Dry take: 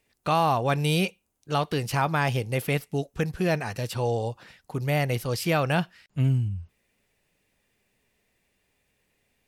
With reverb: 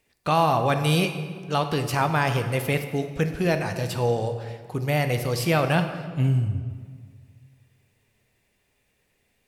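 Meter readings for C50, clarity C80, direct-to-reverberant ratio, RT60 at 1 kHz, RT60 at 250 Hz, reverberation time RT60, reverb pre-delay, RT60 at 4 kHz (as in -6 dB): 8.5 dB, 10.0 dB, 7.0 dB, 1.7 s, 1.9 s, 1.7 s, 8 ms, 1.2 s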